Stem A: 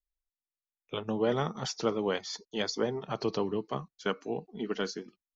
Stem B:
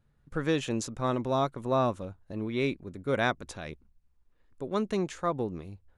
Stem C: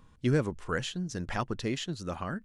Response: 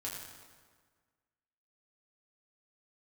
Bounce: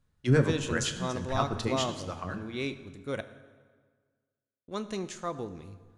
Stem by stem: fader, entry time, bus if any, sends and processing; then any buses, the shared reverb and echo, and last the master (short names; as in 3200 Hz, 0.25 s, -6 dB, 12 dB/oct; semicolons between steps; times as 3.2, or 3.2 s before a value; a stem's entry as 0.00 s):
off
-7.5 dB, 0.00 s, muted 3.21–4.68, send -8 dB, bell 6700 Hz +9 dB 2.1 oct
+0.5 dB, 0.00 s, send -4 dB, harmonic tremolo 9.7 Hz, depth 70%, crossover 570 Hz; three-band expander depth 70%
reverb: on, RT60 1.6 s, pre-delay 5 ms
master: dry